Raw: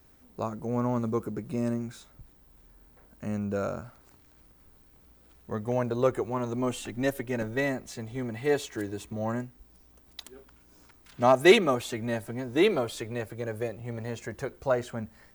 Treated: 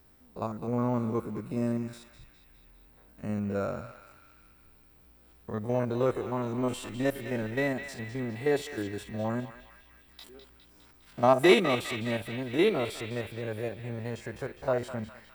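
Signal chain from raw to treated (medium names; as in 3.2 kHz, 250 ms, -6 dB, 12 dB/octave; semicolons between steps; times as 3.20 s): spectrogram pixelated in time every 50 ms; band-stop 6.5 kHz, Q 6.5; band-passed feedback delay 204 ms, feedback 70%, band-pass 2.6 kHz, level -7.5 dB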